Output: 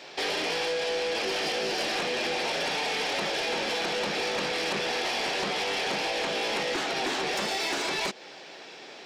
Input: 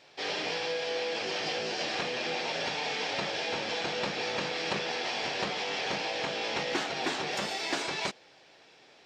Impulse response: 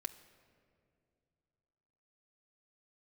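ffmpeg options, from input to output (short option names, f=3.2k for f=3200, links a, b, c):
-filter_complex "[0:a]highpass=f=160:w=0.5412,highpass=f=160:w=1.3066,equalizer=f=380:w=7.9:g=3.5,asplit=2[a][b];[b]alimiter=level_in=6dB:limit=-24dB:level=0:latency=1:release=126,volume=-6dB,volume=-1dB[c];[a][c]amix=inputs=2:normalize=0,acompressor=threshold=-34dB:ratio=2,aeval=exprs='0.075*sin(PI/2*1.78*val(0)/0.075)':c=same,volume=-2dB"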